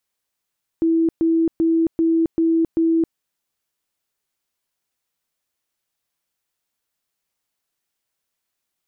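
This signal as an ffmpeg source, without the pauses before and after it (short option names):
-f lavfi -i "aevalsrc='0.2*sin(2*PI*328*mod(t,0.39))*lt(mod(t,0.39),88/328)':d=2.34:s=44100"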